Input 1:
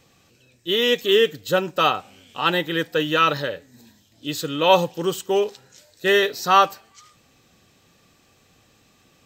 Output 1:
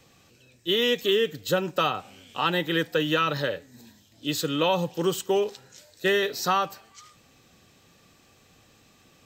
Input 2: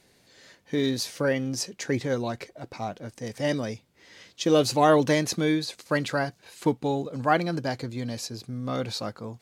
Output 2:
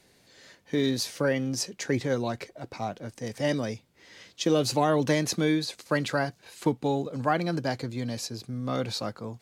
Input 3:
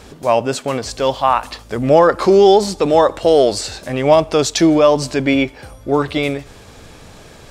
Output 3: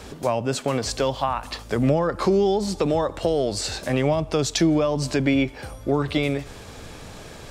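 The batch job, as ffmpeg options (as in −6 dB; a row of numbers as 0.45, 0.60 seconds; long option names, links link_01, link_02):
-filter_complex "[0:a]acrossover=split=210[link_01][link_02];[link_02]acompressor=threshold=-20dB:ratio=10[link_03];[link_01][link_03]amix=inputs=2:normalize=0"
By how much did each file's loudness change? −5.0, −2.0, −8.5 LU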